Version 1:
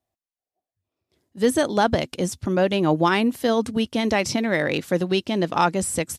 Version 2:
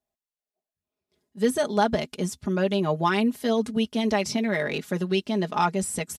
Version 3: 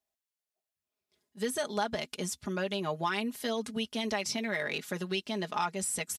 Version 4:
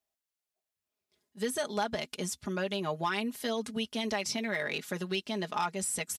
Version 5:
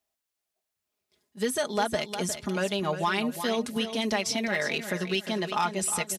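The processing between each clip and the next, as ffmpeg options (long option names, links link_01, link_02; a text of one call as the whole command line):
ffmpeg -i in.wav -af "aecho=1:1:4.8:0.75,volume=-6dB" out.wav
ffmpeg -i in.wav -af "tiltshelf=frequency=740:gain=-5,acompressor=threshold=-27dB:ratio=2,volume=-4dB" out.wav
ffmpeg -i in.wav -af "volume=21.5dB,asoftclip=hard,volume=-21.5dB" out.wav
ffmpeg -i in.wav -af "aecho=1:1:357|714|1071:0.316|0.0917|0.0266,volume=4.5dB" out.wav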